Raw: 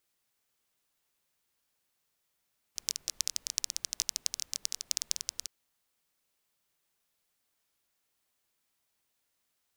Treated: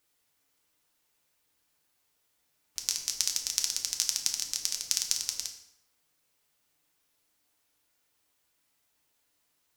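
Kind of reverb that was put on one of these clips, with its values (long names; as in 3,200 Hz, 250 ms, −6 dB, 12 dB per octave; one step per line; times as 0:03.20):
feedback delay network reverb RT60 0.82 s, low-frequency decay 1×, high-frequency decay 0.75×, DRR 2.5 dB
level +3 dB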